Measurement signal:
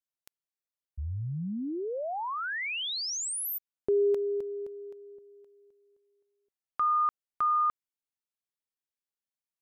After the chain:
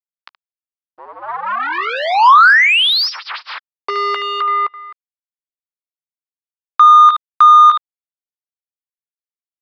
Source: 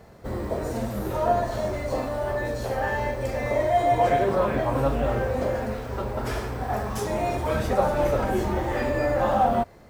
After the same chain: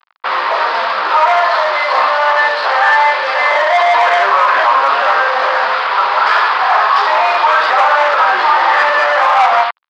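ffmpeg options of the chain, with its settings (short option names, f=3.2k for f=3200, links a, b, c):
-filter_complex "[0:a]aecho=1:1:15|73:0.2|0.2,adynamicequalizer=threshold=0.00224:dfrequency=2300:dqfactor=6.8:tfrequency=2300:tqfactor=6.8:attack=5:release=100:ratio=0.375:range=2:mode=cutabove:tftype=bell,acrusher=bits=5:mix=0:aa=0.5,aresample=11025,aresample=44100,asplit=2[a][b];[b]highpass=f=720:p=1,volume=22dB,asoftclip=type=tanh:threshold=-7.5dB[c];[a][c]amix=inputs=2:normalize=0,lowpass=f=3.4k:p=1,volume=-6dB,highpass=f=1.1k:t=q:w=2.6,alimiter=level_in=8dB:limit=-1dB:release=50:level=0:latency=1,volume=-1dB"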